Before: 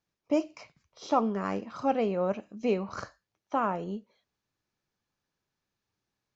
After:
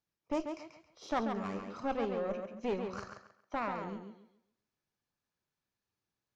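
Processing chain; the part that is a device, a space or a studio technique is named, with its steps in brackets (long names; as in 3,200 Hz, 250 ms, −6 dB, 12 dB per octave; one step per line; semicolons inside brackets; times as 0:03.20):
rockabilly slapback (tube saturation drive 23 dB, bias 0.7; tape delay 138 ms, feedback 30%, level −5 dB, low-pass 5,600 Hz)
level −2.5 dB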